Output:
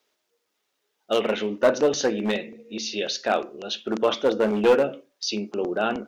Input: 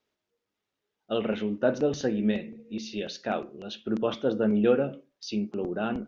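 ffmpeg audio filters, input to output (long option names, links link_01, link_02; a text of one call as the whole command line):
ffmpeg -i in.wav -af "aeval=exprs='clip(val(0),-1,0.1)':channel_layout=same,bass=frequency=250:gain=-15,treble=frequency=4000:gain=5,volume=8dB" out.wav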